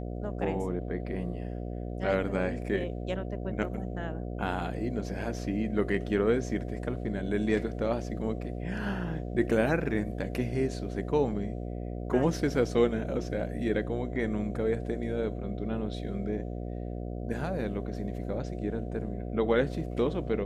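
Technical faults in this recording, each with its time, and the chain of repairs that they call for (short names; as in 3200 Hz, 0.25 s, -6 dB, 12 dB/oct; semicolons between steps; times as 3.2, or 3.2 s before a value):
buzz 60 Hz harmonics 12 -36 dBFS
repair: de-hum 60 Hz, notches 12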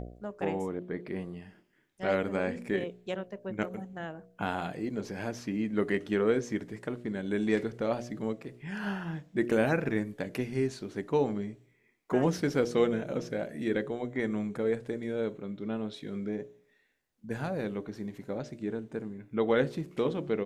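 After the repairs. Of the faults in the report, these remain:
none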